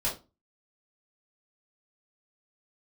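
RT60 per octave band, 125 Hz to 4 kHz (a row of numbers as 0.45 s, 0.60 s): 0.40 s, 0.40 s, 0.30 s, 0.25 s, 0.20 s, 0.20 s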